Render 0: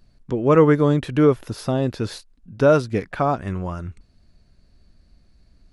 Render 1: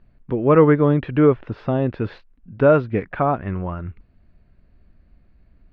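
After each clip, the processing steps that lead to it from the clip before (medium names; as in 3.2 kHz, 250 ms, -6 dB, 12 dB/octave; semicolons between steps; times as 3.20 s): low-pass 2.7 kHz 24 dB/octave; trim +1 dB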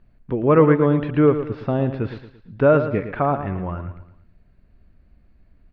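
feedback delay 113 ms, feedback 40%, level -10.5 dB; trim -1 dB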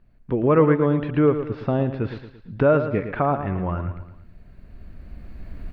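recorder AGC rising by 8.8 dB/s; trim -2.5 dB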